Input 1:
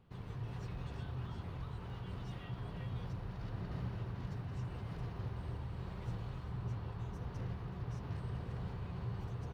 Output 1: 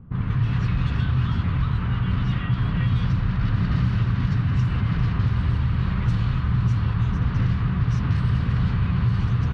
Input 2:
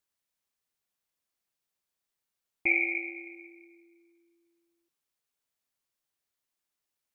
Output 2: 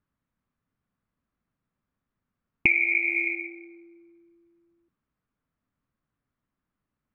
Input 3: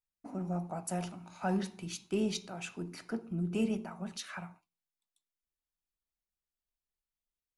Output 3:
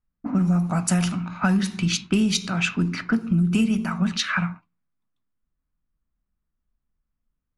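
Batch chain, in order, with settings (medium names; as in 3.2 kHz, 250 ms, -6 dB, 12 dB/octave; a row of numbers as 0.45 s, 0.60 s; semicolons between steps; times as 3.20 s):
level-controlled noise filter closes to 690 Hz, open at -33 dBFS; high-order bell 550 Hz -12 dB; compression 16:1, threshold -38 dBFS; normalise loudness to -23 LUFS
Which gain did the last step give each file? +22.0 dB, +20.0 dB, +21.0 dB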